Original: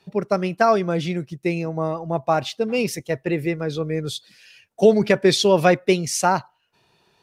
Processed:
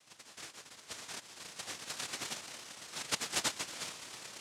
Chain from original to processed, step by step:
mains-hum notches 60/120/180/240/300/360/420/480/540 Hz
time stretch by overlap-add 0.61×, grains 57 ms
auto-filter band-pass saw down 0.84 Hz 770–4,100 Hz
steady tone 490 Hz −55 dBFS
on a send: echo that builds up and dies away 114 ms, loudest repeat 8, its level −17 dB
on the sum: band-pass filter sweep 230 Hz → 3,900 Hz, 0:01.06–0:04.45
backwards echo 126 ms −11.5 dB
cochlear-implant simulation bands 1
level +2.5 dB

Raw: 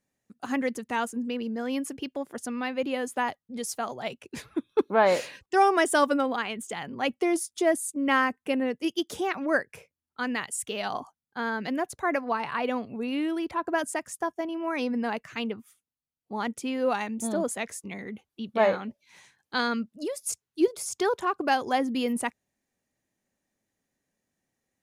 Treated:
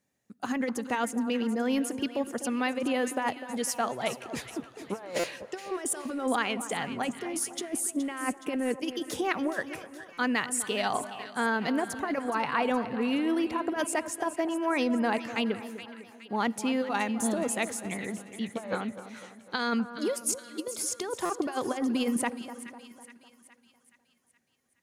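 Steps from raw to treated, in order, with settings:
high-pass filter 61 Hz
compressor whose output falls as the input rises −28 dBFS, ratio −0.5
echo with a time of its own for lows and highs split 1,400 Hz, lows 251 ms, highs 420 ms, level −12 dB
on a send at −23 dB: convolution reverb RT60 2.9 s, pre-delay 50 ms
on the sum: buffer that repeats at 0:05.19/0:10.13/0:21.25, samples 256, times 7

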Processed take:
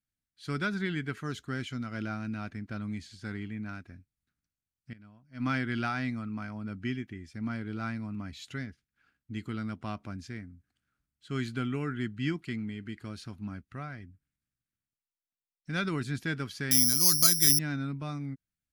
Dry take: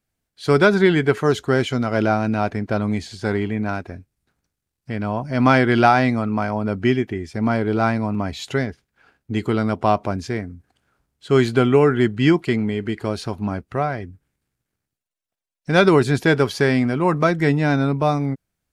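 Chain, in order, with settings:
0:16.71–0:17.59: bad sample-rate conversion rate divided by 8×, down none, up zero stuff
flat-topped bell 610 Hz −11.5 dB
0:04.93–0:05.46: expander for the loud parts 2.5 to 1, over −28 dBFS
level −13.5 dB

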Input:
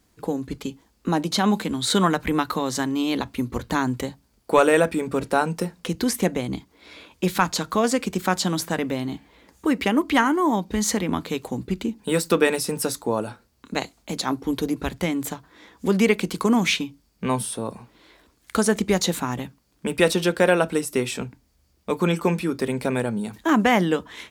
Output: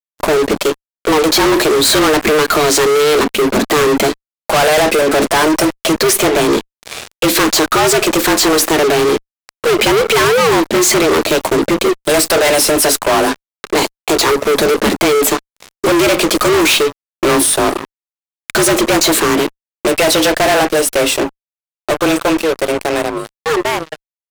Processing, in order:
fade-out on the ending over 6.22 s
frequency shifter +150 Hz
fuzz pedal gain 39 dB, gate −41 dBFS
level +3.5 dB

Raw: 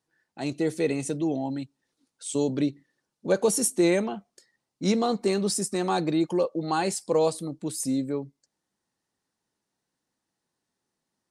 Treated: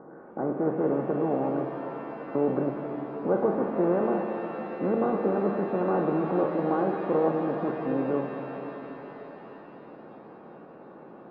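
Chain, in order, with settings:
compressor on every frequency bin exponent 0.4
elliptic low-pass filter 1,400 Hz, stop band 60 dB
reverb with rising layers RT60 4 s, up +7 semitones, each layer −8 dB, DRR 3.5 dB
level −7 dB

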